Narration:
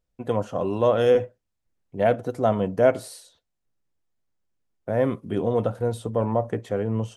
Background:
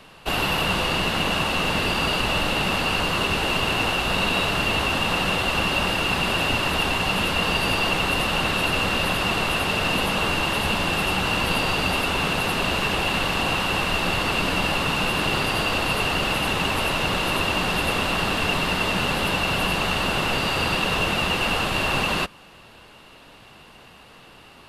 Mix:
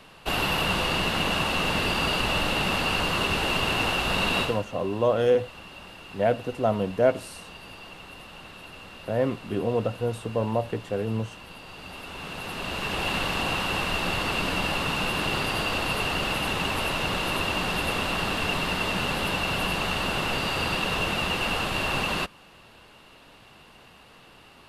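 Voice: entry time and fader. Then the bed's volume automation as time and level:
4.20 s, -2.5 dB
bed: 4.41 s -2.5 dB
4.66 s -21.5 dB
11.62 s -21.5 dB
13.08 s -4 dB

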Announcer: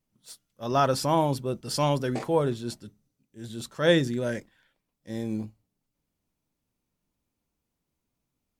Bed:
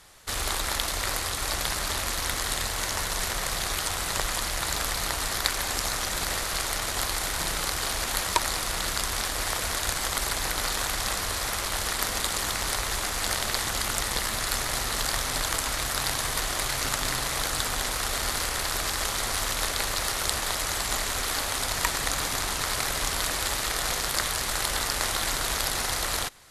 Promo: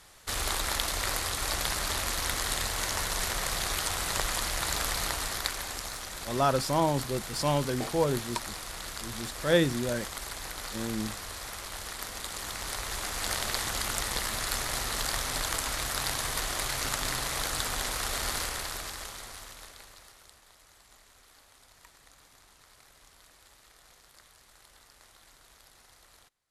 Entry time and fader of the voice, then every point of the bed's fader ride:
5.65 s, -2.5 dB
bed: 5.02 s -2 dB
6.00 s -10.5 dB
12.16 s -10.5 dB
13.36 s -3.5 dB
18.38 s -3.5 dB
20.41 s -30 dB

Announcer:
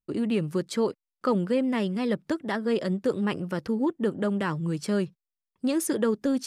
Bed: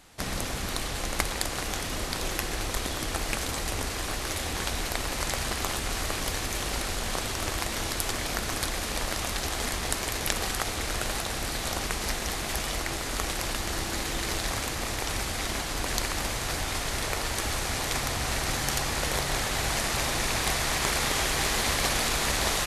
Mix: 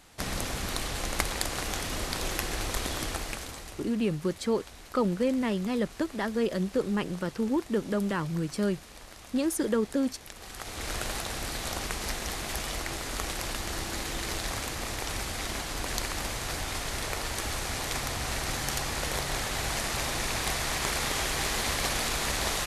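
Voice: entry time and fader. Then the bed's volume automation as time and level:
3.70 s, -2.0 dB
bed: 3.03 s -1 dB
3.98 s -17.5 dB
10.34 s -17.5 dB
10.89 s -3 dB

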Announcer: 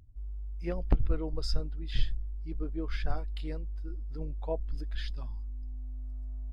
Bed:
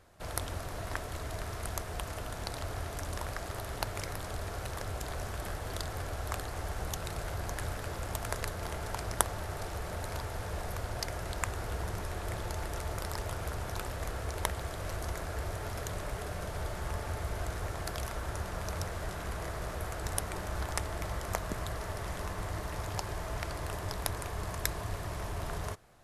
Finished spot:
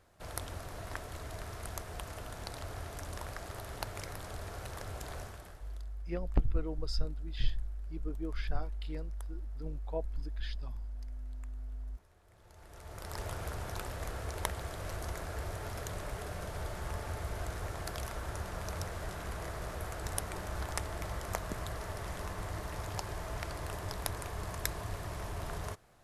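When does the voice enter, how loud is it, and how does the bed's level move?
5.45 s, -3.0 dB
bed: 5.18 s -4.5 dB
5.97 s -27.5 dB
12.28 s -27.5 dB
13.21 s -2.5 dB

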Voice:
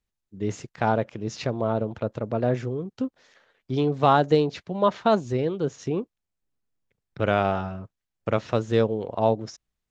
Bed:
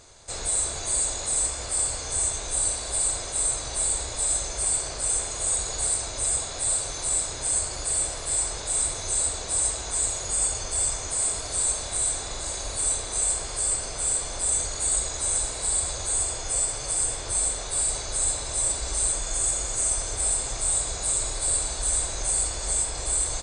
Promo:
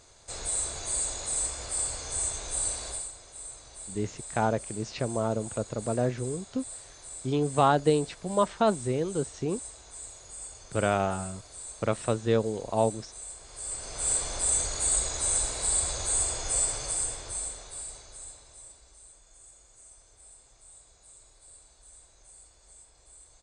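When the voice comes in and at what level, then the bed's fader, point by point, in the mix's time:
3.55 s, -3.5 dB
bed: 2.88 s -5 dB
3.12 s -17.5 dB
13.39 s -17.5 dB
14.12 s -1.5 dB
16.72 s -1.5 dB
19.02 s -28.5 dB

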